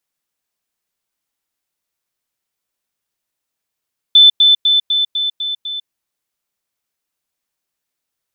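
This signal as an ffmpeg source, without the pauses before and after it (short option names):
-f lavfi -i "aevalsrc='pow(10,(-3-3*floor(t/0.25))/20)*sin(2*PI*3520*t)*clip(min(mod(t,0.25),0.15-mod(t,0.25))/0.005,0,1)':d=1.75:s=44100"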